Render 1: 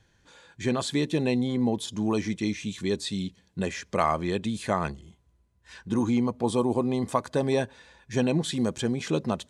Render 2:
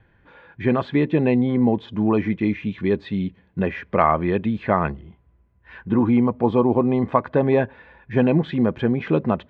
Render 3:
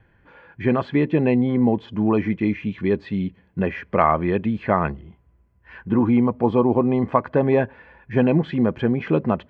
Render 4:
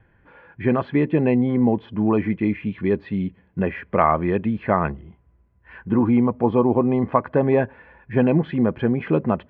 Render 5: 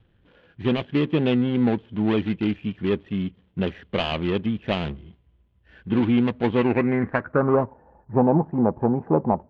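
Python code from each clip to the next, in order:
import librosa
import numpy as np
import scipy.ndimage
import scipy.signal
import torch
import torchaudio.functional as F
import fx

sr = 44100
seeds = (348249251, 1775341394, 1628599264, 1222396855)

y1 = scipy.signal.sosfilt(scipy.signal.butter(4, 2400.0, 'lowpass', fs=sr, output='sos'), x)
y1 = F.gain(torch.from_numpy(y1), 7.0).numpy()
y2 = fx.notch(y1, sr, hz=3700.0, q=7.6)
y3 = scipy.signal.sosfilt(scipy.signal.butter(2, 2900.0, 'lowpass', fs=sr, output='sos'), y2)
y4 = scipy.ndimage.median_filter(y3, 41, mode='constant')
y4 = fx.filter_sweep_lowpass(y4, sr, from_hz=3200.0, to_hz=870.0, start_s=6.53, end_s=7.76, q=5.9)
y4 = F.gain(torch.from_numpy(y4), -2.0).numpy()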